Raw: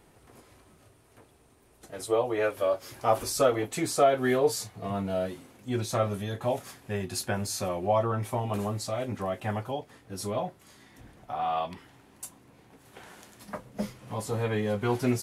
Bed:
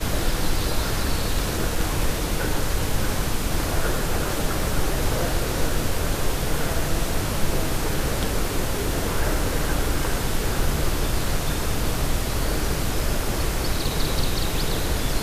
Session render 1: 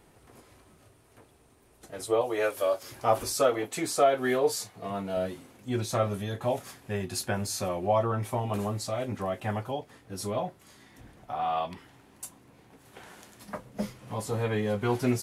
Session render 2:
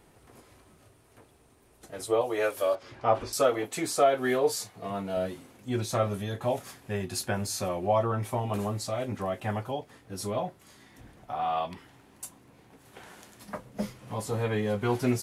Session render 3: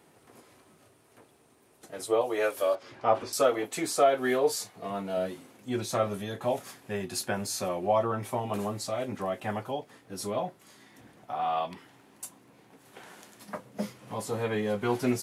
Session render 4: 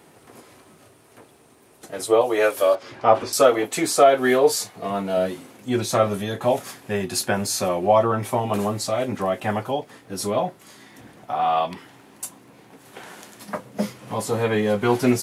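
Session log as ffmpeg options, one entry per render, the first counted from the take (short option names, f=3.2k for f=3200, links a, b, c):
-filter_complex "[0:a]asettb=1/sr,asplit=3[a][b][c];[a]atrim=end=2.214[d];[b]atrim=start=2.21:end=2.83,asetpts=PTS-STARTPTS,afade=t=in:d=0.004:c=qsin,afade=t=out:st=0.616:d=0.004:c=qsin,bass=f=250:g=-7,treble=f=4k:g=8[e];[c]atrim=start=2.826[f];[d][e]acrossfade=d=0.004:c1=hsin:c2=qsin[g];[g][f]acrossfade=d=0.004:c1=qsin:c2=hsin,asettb=1/sr,asplit=3[h][i][j];[h]atrim=end=3.344[k];[i]atrim=start=3.34:end=5.17,asetpts=PTS-STARTPTS,afade=t=in:d=0.004:c=qsin,afade=t=out:st=1.826:d=0.004:c=qsin,highpass=f=240:p=1[l];[j]atrim=start=5.166[m];[k][l]acrossfade=d=0.004:c1=hsin:c2=qsin[n];[n][m]acrossfade=d=0.004:c1=qsin:c2=hsin"
-filter_complex "[0:a]asettb=1/sr,asplit=3[a][b][c];[a]atrim=end=2.754[d];[b]atrim=start=2.75:end=3.33,asetpts=PTS-STARTPTS,afade=t=in:d=0.004:c=qsin,afade=t=out:st=0.576:d=0.004:c=qsin,lowpass=3.3k[e];[c]atrim=start=3.326[f];[d][e]acrossfade=d=0.004:c1=hsin:c2=qsin[g];[g][f]acrossfade=d=0.004:c1=qsin:c2=hsin"
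-af "highpass=150"
-af "volume=8.5dB,alimiter=limit=-2dB:level=0:latency=1"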